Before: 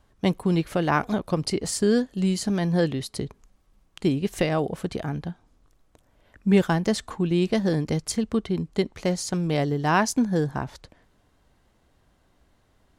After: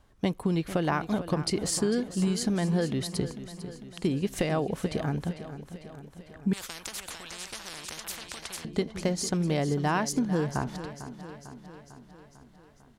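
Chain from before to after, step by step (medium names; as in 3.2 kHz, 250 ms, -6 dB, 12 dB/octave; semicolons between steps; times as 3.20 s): compression, threshold -23 dBFS, peak gain reduction 10 dB; on a send: feedback delay 449 ms, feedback 60%, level -13 dB; 6.53–8.65 s: on the sum: spectrum-flattening compressor 10:1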